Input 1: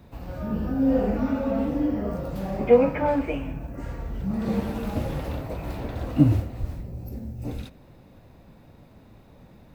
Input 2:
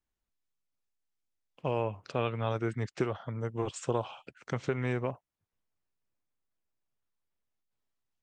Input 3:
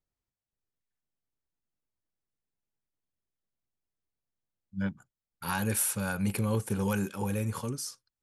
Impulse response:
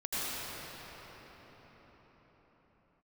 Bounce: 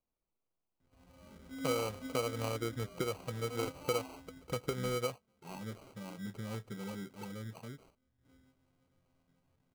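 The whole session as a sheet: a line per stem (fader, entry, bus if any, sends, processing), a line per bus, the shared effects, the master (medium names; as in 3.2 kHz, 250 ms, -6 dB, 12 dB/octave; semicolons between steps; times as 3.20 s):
-12.5 dB, 0.80 s, no bus, no send, chord resonator F2 fifth, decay 0.33 s; auto duck -23 dB, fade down 0.25 s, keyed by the third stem
-4.5 dB, 0.00 s, bus A, no send, small resonant body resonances 490/1700/3100 Hz, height 14 dB, ringing for 90 ms
-12.0 dB, 0.00 s, bus A, no send, FFT band-pass 100–9500 Hz; treble shelf 3.6 kHz -8 dB
bus A: 0.0 dB, resonant high shelf 2.3 kHz +6.5 dB, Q 1.5; compression 2.5:1, threshold -32 dBFS, peak gain reduction 7 dB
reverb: none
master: high-order bell 4.1 kHz -16 dB 2.3 oct; sample-and-hold 25×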